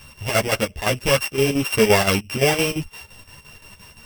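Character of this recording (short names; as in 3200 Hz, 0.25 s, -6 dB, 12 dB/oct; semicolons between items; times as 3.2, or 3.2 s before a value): a buzz of ramps at a fixed pitch in blocks of 16 samples; chopped level 5.8 Hz, depth 60%, duty 70%; a shimmering, thickened sound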